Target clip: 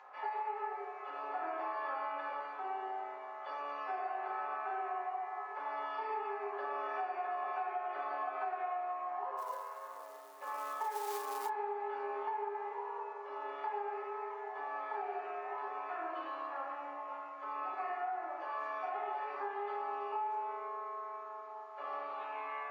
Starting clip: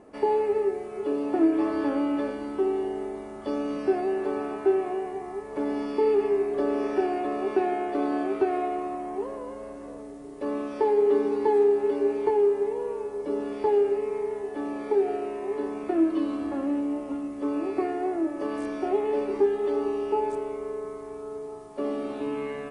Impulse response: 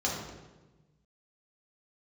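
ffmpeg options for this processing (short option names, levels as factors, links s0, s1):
-filter_complex "[0:a]lowpass=1600,acompressor=mode=upward:threshold=0.00891:ratio=2.5[s0];[1:a]atrim=start_sample=2205,afade=t=out:st=0.34:d=0.01,atrim=end_sample=15435[s1];[s0][s1]afir=irnorm=-1:irlink=0,asplit=3[s2][s3][s4];[s2]afade=t=out:st=9.37:d=0.02[s5];[s3]acrusher=bits=9:mode=log:mix=0:aa=0.000001,afade=t=in:st=9.37:d=0.02,afade=t=out:st=11.48:d=0.02[s6];[s4]afade=t=in:st=11.48:d=0.02[s7];[s5][s6][s7]amix=inputs=3:normalize=0,highpass=f=970:w=0.5412,highpass=f=970:w=1.3066,acompressor=threshold=0.0251:ratio=6,volume=0.75" -ar 48000 -c:a aac -b:a 192k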